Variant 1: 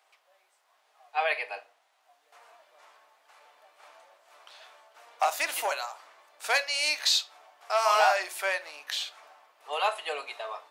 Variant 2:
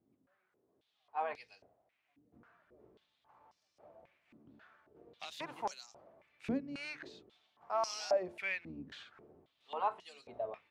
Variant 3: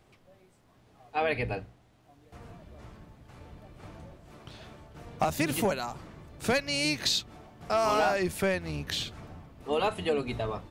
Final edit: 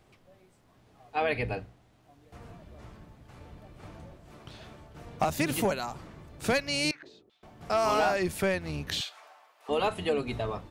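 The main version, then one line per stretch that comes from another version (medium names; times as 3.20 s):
3
6.91–7.43 s: from 2
9.01–9.69 s: from 1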